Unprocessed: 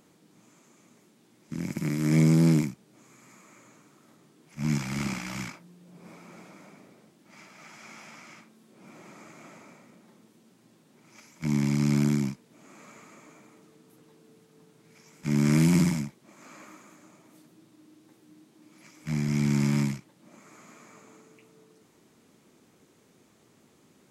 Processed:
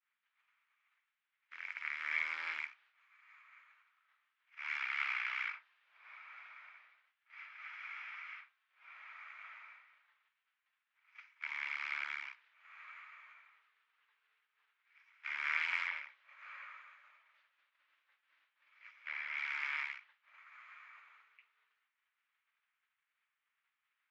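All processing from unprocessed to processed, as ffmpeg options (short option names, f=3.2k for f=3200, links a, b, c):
-filter_complex "[0:a]asettb=1/sr,asplit=3[a][b][c];[a]atrim=end=15.874[d];[b]atrim=start=15.87:end=19.38,asetpts=PTS-STARTPTS,afade=t=in:d=0.004:c=qsin,afade=t=out:st=3.506:d=0.004:c=qsin,acrossover=split=5000[e][f];[f]acompressor=threshold=-56dB:ratio=4:attack=1:release=60[g];[e][g]amix=inputs=2:normalize=0,equalizer=f=540:w=5.1:g=10.5[h];[c]atrim=start=19.376[i];[d][h]acrossfade=d=0.004:c1=hsin:c2=qsin[j];[j][i]acrossfade=d=0.004:c1=qsin:c2=hsin,lowpass=f=2.7k:w=0.5412,lowpass=f=2.7k:w=1.3066,agate=range=-33dB:threshold=-50dB:ratio=3:detection=peak,highpass=f=1.4k:w=0.5412,highpass=f=1.4k:w=1.3066,volume=4.5dB"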